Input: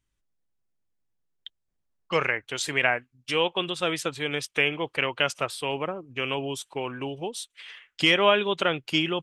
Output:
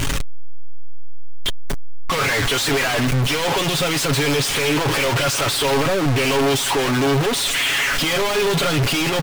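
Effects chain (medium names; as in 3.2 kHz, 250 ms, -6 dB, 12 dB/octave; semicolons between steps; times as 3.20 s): one-bit comparator; treble shelf 7.8 kHz -8 dB; comb 7.2 ms, depth 50%; trim +9 dB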